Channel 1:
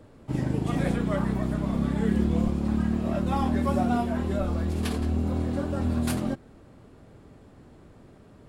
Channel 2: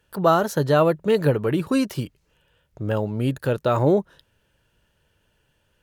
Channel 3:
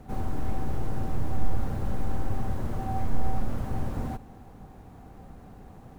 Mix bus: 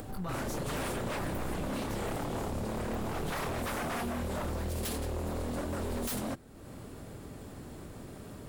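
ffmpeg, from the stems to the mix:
-filter_complex "[0:a]aemphasis=mode=production:type=50fm,volume=-3.5dB[a];[1:a]equalizer=f=440:w=0.82:g=-13,alimiter=limit=-21dB:level=0:latency=1,flanger=delay=19:depth=7.4:speed=0.94,volume=-6dB,asplit=2[b][c];[2:a]volume=-10.5dB[d];[c]apad=whole_len=263783[e];[d][e]sidechaincompress=threshold=-41dB:ratio=8:attack=16:release=390[f];[a][b][f]amix=inputs=3:normalize=0,acompressor=mode=upward:threshold=-35dB:ratio=2.5,aeval=exprs='0.0335*(abs(mod(val(0)/0.0335+3,4)-2)-1)':c=same"

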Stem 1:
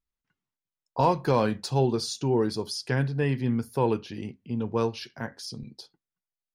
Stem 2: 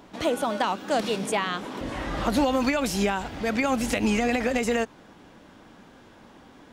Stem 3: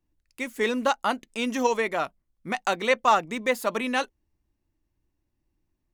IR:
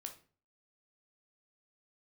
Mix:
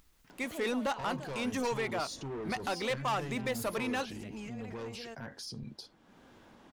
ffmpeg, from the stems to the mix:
-filter_complex "[0:a]asoftclip=type=tanh:threshold=-27dB,volume=0.5dB[a];[1:a]adelay=300,volume=-16.5dB[b];[2:a]asoftclip=type=tanh:threshold=-22dB,volume=-3dB[c];[a][b]amix=inputs=2:normalize=0,acompressor=mode=upward:threshold=-47dB:ratio=2.5,alimiter=level_in=11dB:limit=-24dB:level=0:latency=1:release=62,volume=-11dB,volume=0dB[d];[c][d]amix=inputs=2:normalize=0,alimiter=level_in=2dB:limit=-24dB:level=0:latency=1:release=58,volume=-2dB"

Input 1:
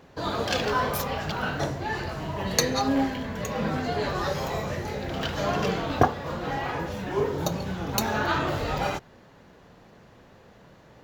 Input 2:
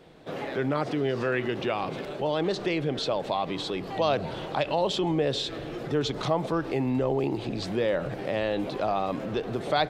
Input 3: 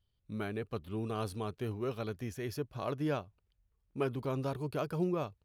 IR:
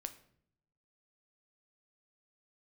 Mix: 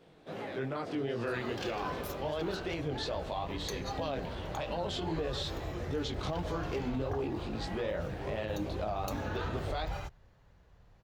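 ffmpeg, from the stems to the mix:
-filter_complex "[0:a]asubboost=boost=10:cutoff=76,adelay=1100,volume=-14dB[a];[1:a]flanger=delay=17:depth=6.3:speed=2.5,volume=-4dB[b];[2:a]alimiter=level_in=8.5dB:limit=-24dB:level=0:latency=1,volume=-8.5dB,volume=-12.5dB[c];[a][b][c]amix=inputs=3:normalize=0,alimiter=level_in=1.5dB:limit=-24dB:level=0:latency=1:release=47,volume=-1.5dB"

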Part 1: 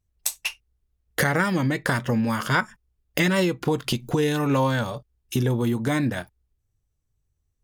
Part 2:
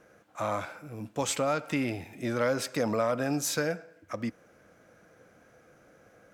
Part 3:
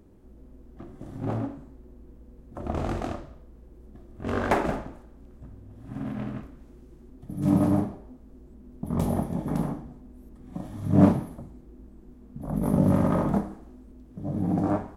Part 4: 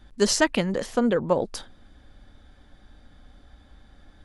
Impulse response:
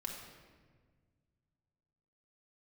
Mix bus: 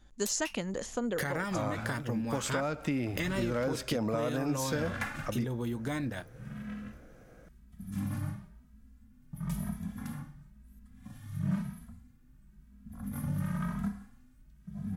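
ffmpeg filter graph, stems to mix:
-filter_complex "[0:a]volume=-9.5dB,asplit=2[a][b];[1:a]lowshelf=f=370:g=9,adelay=1150,volume=-2.5dB[c];[2:a]firequalizer=gain_entry='entry(210,0);entry(320,-22);entry(1500,5);entry(3400,3);entry(12000,7)':delay=0.05:min_phase=1,asplit=2[d][e];[e]adelay=2.7,afreqshift=0.99[f];[d][f]amix=inputs=2:normalize=1,adelay=500,volume=-4dB[g];[3:a]equalizer=f=6.8k:w=4.4:g=14.5,volume=-8.5dB[h];[b]apad=whole_len=187151[i];[h][i]sidechaincompress=threshold=-34dB:ratio=8:attack=16:release=198[j];[a][c][g][j]amix=inputs=4:normalize=0,acompressor=threshold=-30dB:ratio=2.5"

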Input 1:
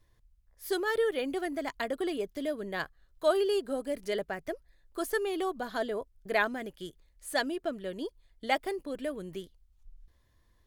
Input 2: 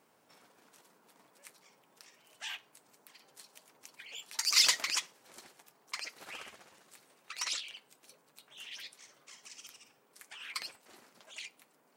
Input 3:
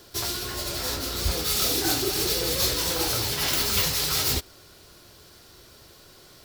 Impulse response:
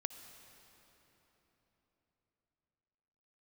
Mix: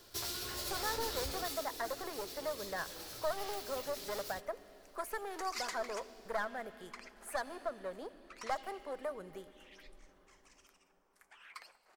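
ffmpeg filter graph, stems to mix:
-filter_complex "[0:a]aeval=exprs='clip(val(0),-1,0.02)':c=same,volume=1dB,asplit=2[a][b];[b]volume=-10.5dB[c];[1:a]adelay=1000,volume=-5dB,asplit=2[d][e];[e]volume=-16.5dB[f];[2:a]acompressor=threshold=-27dB:ratio=6,volume=-8dB,afade=t=out:st=1.31:d=0.34:silence=0.354813[g];[a][d]amix=inputs=2:normalize=0,acrossover=split=390 2300:gain=0.251 1 0.2[h][i][j];[h][i][j]amix=inputs=3:normalize=0,acompressor=threshold=-35dB:ratio=6,volume=0dB[k];[3:a]atrim=start_sample=2205[l];[c][f]amix=inputs=2:normalize=0[m];[m][l]afir=irnorm=-1:irlink=0[n];[g][k][n]amix=inputs=3:normalize=0,equalizer=f=100:w=0.36:g=-4.5"

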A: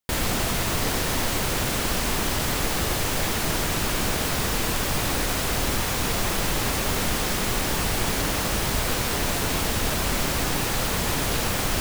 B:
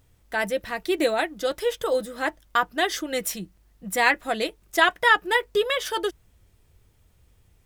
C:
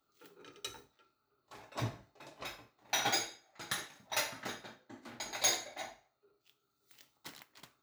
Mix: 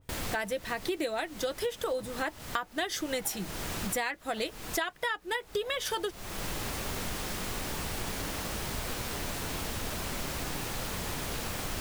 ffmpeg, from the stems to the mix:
-filter_complex "[0:a]flanger=delay=9.2:depth=5:regen=-76:speed=1.1:shape=triangular,volume=-6dB[a];[1:a]adynamicequalizer=threshold=0.0316:dfrequency=2800:dqfactor=0.7:tfrequency=2800:tqfactor=0.7:attack=5:release=100:ratio=0.375:range=1.5:mode=boostabove:tftype=highshelf,volume=-0.5dB,asplit=2[b][c];[2:a]lowpass=1.2k,adelay=200,volume=-8dB[d];[c]apad=whole_len=520668[e];[a][e]sidechaincompress=threshold=-32dB:ratio=8:attack=5.3:release=413[f];[f][b][d]amix=inputs=3:normalize=0,acompressor=threshold=-28dB:ratio=20"

